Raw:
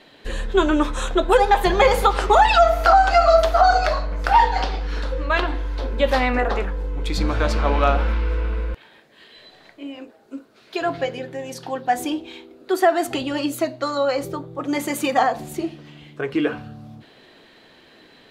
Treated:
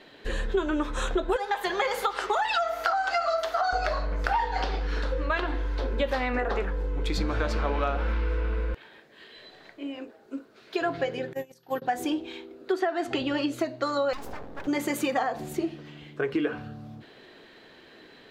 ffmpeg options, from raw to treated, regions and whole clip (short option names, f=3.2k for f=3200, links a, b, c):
-filter_complex "[0:a]asettb=1/sr,asplit=3[a][b][c];[a]atrim=end=1.364[d];[b]atrim=start=1.36:end=3.73,asetpts=PTS-STARTPTS,afade=t=in:d=0.004:c=qsin,afade=t=out:st=2.366:d=0.004:c=qsin,highpass=f=1k:p=1,bandreject=f=2.5k:w=20[e];[c]atrim=start=3.726[f];[d][e]acrossfade=d=0.004:c1=hsin:c2=qsin[g];[g][f]acrossfade=d=0.004:c1=qsin:c2=hsin,asettb=1/sr,asplit=3[h][i][j];[h]atrim=end=11.334[k];[i]atrim=start=11.33:end=11.82,asetpts=PTS-STARTPTS,afade=t=in:d=0.004:c=qsin,afade=t=out:st=0.486:d=0.004:c=qsin,highshelf=f=7.8k:g=7,aeval=exprs='val(0)+0.00501*sin(2*PI*12000*n/s)':c=same,agate=range=-23dB:threshold=-30dB:ratio=16:release=100:detection=peak[l];[j]atrim=start=11.816[m];[k][l]acrossfade=d=0.004:c1=hsin:c2=qsin[n];[n][m]acrossfade=d=0.004:c1=qsin:c2=hsin,asettb=1/sr,asplit=3[o][p][q];[o]atrim=end=12.724[r];[p]atrim=start=12.72:end=13.59,asetpts=PTS-STARTPTS,afade=t=in:d=0.004:c=qsin,afade=t=out:st=0.866:d=0.004:c=qsin,lowpass=3.7k,aemphasis=mode=production:type=50kf[s];[q]atrim=start=13.586[t];[r][s]acrossfade=d=0.004:c1=hsin:c2=qsin[u];[u][t]acrossfade=d=0.004:c1=qsin:c2=hsin,asettb=1/sr,asplit=3[v][w][x];[v]atrim=end=14.134[y];[w]atrim=start=14.13:end=14.67,asetpts=PTS-STARTPTS,afade=t=in:d=0.004:c=qsin,afade=t=out:st=0.536:d=0.004:c=qsin,aeval=exprs='abs(val(0))':c=same,acompressor=threshold=-30dB:ratio=3:attack=3.2:release=140:knee=1:detection=peak[z];[x]atrim=start=14.666[aa];[y][z]acrossfade=d=0.004:c1=hsin:c2=qsin[ab];[ab][aa]acrossfade=d=0.004:c1=qsin:c2=hsin,equalizer=f=400:t=o:w=0.67:g=4,equalizer=f=1.6k:t=o:w=0.67:g=3,equalizer=f=10k:t=o:w=0.67:g=-4,acompressor=threshold=-20dB:ratio=6,volume=-3dB"